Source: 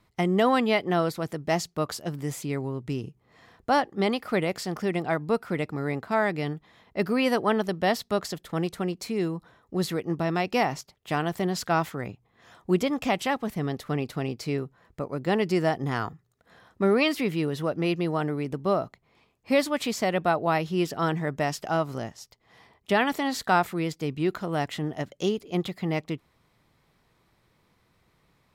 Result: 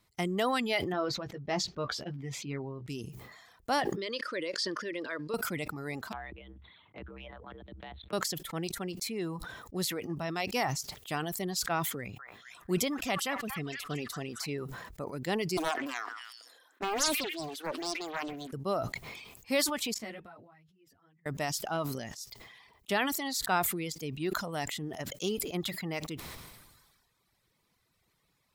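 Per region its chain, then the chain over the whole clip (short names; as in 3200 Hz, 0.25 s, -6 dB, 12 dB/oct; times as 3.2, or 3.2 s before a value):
0.92–2.88 air absorption 220 m + doubler 15 ms -6.5 dB
3.96–5.34 compressor 3:1, threshold -26 dBFS + Butterworth band-stop 760 Hz, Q 2.4 + speaker cabinet 310–8000 Hz, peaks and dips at 330 Hz +6 dB, 540 Hz +9 dB, 1700 Hz +8 dB, 3200 Hz +4 dB, 4700 Hz +7 dB, 7500 Hz -9 dB
6.12–8.13 monotone LPC vocoder at 8 kHz 130 Hz + compressor 3:1, threshold -37 dBFS + frequency shift +67 Hz
11.96–14.5 notch 870 Hz, Q 10 + delay with a stepping band-pass 0.229 s, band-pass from 1200 Hz, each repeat 0.7 oct, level -2 dB
15.57–18.53 elliptic high-pass 270 Hz + delay with a stepping band-pass 0.128 s, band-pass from 1600 Hz, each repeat 0.7 oct, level -8 dB + Doppler distortion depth 0.95 ms
19.94–21.26 EQ curve 130 Hz 0 dB, 820 Hz -9 dB, 2000 Hz -4 dB, 4900 Hz -12 dB + flipped gate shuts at -35 dBFS, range -26 dB + ensemble effect
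whole clip: high shelf 3300 Hz +12 dB; reverb removal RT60 1.4 s; sustainer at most 40 dB/s; gain -8 dB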